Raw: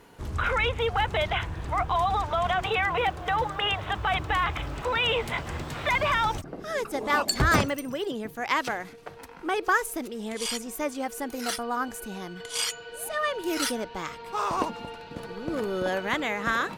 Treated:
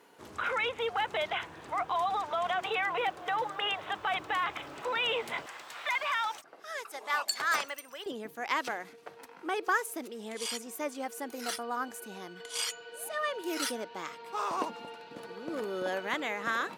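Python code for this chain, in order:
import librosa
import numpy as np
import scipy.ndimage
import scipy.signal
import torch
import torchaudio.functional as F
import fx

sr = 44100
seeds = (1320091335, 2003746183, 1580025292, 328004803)

y = fx.highpass(x, sr, hz=fx.steps((0.0, 290.0), (5.46, 880.0), (8.06, 250.0)), slope=12)
y = y * librosa.db_to_amplitude(-5.0)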